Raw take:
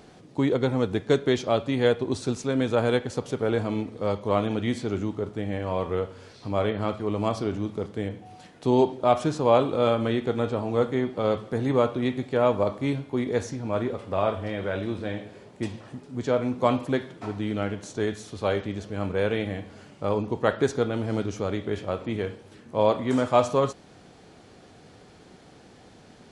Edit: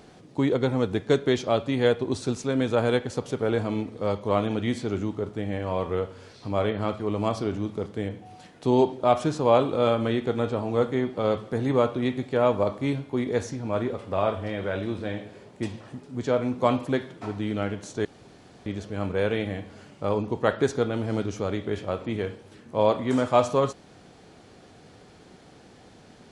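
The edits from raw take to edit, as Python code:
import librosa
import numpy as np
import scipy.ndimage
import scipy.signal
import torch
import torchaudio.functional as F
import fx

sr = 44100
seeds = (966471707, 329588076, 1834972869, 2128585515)

y = fx.edit(x, sr, fx.room_tone_fill(start_s=18.05, length_s=0.61), tone=tone)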